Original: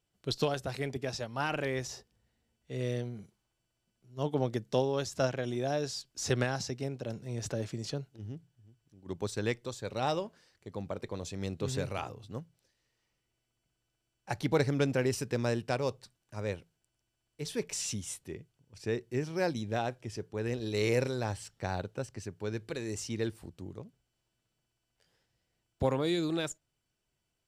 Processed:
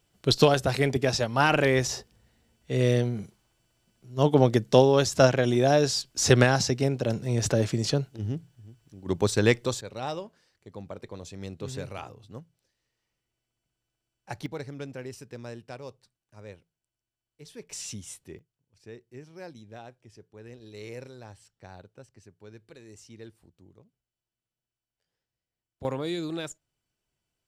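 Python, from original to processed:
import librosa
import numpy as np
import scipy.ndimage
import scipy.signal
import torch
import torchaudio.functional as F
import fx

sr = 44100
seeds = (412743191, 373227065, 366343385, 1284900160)

y = fx.gain(x, sr, db=fx.steps((0.0, 11.0), (9.81, -2.0), (14.46, -9.5), (17.7, -2.0), (18.39, -12.0), (25.85, -1.0)))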